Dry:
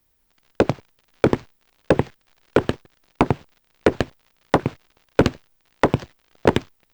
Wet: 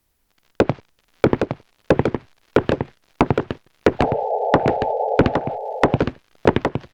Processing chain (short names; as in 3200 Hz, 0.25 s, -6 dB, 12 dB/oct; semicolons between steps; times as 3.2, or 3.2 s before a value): painted sound noise, 3.99–5.16, 410–890 Hz -23 dBFS; treble ducked by the level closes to 2700 Hz, closed at -14 dBFS; echo 0.814 s -5.5 dB; gain +1 dB